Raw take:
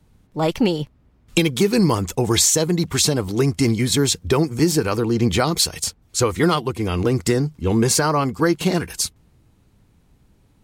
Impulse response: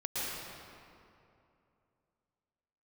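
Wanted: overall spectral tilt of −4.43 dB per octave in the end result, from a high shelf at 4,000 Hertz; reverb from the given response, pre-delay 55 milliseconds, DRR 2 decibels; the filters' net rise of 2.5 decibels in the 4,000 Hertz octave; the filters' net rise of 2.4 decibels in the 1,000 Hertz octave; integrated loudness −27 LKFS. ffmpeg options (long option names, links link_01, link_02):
-filter_complex "[0:a]equalizer=frequency=1000:width_type=o:gain=3,highshelf=frequency=4000:gain=-3.5,equalizer=frequency=4000:width_type=o:gain=5,asplit=2[link_01][link_02];[1:a]atrim=start_sample=2205,adelay=55[link_03];[link_02][link_03]afir=irnorm=-1:irlink=0,volume=-7.5dB[link_04];[link_01][link_04]amix=inputs=2:normalize=0,volume=-10dB"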